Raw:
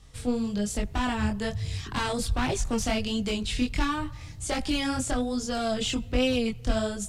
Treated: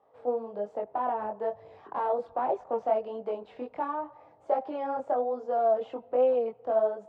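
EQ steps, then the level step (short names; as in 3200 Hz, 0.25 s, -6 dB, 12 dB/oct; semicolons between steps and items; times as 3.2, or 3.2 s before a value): Butterworth band-pass 660 Hz, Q 1.5; +6.5 dB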